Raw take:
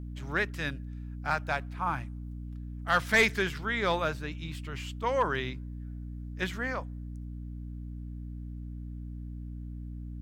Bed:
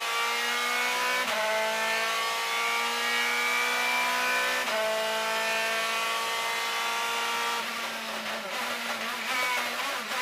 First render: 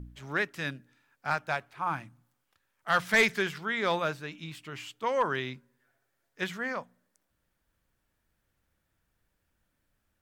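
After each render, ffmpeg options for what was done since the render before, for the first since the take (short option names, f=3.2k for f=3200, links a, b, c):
-af "bandreject=f=60:t=h:w=4,bandreject=f=120:t=h:w=4,bandreject=f=180:t=h:w=4,bandreject=f=240:t=h:w=4,bandreject=f=300:t=h:w=4"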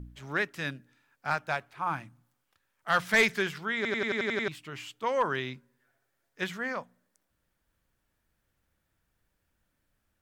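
-filter_complex "[0:a]asplit=9[a][b][c][d][e][f][g][h][i];[a]atrim=end=3.852[j];[b]atrim=start=3.758:end=3.852[k];[c]atrim=start=3.758:end=3.852[l];[d]atrim=start=3.758:end=3.852[m];[e]atrim=start=3.758:end=3.852[n];[f]atrim=start=3.758:end=3.852[o];[g]atrim=start=3.758:end=3.852[p];[h]atrim=start=3.758:end=3.852[q];[i]atrim=start=4.478[r];[j][k]acrossfade=d=0.004:c1=hsin:c2=hsin[s];[s][l]acrossfade=d=0.004:c1=hsin:c2=hsin[t];[t][m]acrossfade=d=0.004:c1=hsin:c2=hsin[u];[u][n]acrossfade=d=0.004:c1=hsin:c2=hsin[v];[v][o]acrossfade=d=0.004:c1=hsin:c2=hsin[w];[w][p]acrossfade=d=0.004:c1=hsin:c2=hsin[x];[x][q]acrossfade=d=0.004:c1=hsin:c2=hsin[y];[y][r]acrossfade=d=0.004:c1=hsin:c2=hsin"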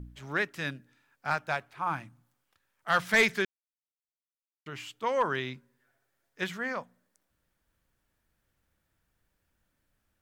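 -filter_complex "[0:a]asplit=3[a][b][c];[a]atrim=end=3.45,asetpts=PTS-STARTPTS,afade=t=out:st=3.446:d=0.004:c=hsin[d];[b]atrim=start=3.45:end=4.66,asetpts=PTS-STARTPTS,volume=0[e];[c]atrim=start=4.66,asetpts=PTS-STARTPTS,afade=t=in:d=0.004:c=hsin[f];[d][e][f]concat=n=3:v=0:a=1"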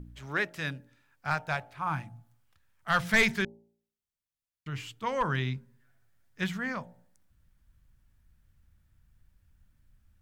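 -af "bandreject=f=57.06:t=h:w=4,bandreject=f=114.12:t=h:w=4,bandreject=f=171.18:t=h:w=4,bandreject=f=228.24:t=h:w=4,bandreject=f=285.3:t=h:w=4,bandreject=f=342.36:t=h:w=4,bandreject=f=399.42:t=h:w=4,bandreject=f=456.48:t=h:w=4,bandreject=f=513.54:t=h:w=4,bandreject=f=570.6:t=h:w=4,bandreject=f=627.66:t=h:w=4,bandreject=f=684.72:t=h:w=4,bandreject=f=741.78:t=h:w=4,bandreject=f=798.84:t=h:w=4,bandreject=f=855.9:t=h:w=4,bandreject=f=912.96:t=h:w=4,asubboost=boost=7.5:cutoff=150"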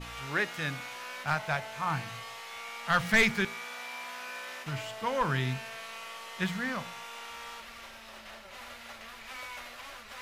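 -filter_complex "[1:a]volume=-14.5dB[a];[0:a][a]amix=inputs=2:normalize=0"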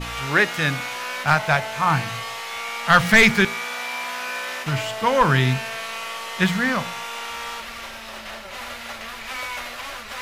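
-af "volume=12dB,alimiter=limit=-3dB:level=0:latency=1"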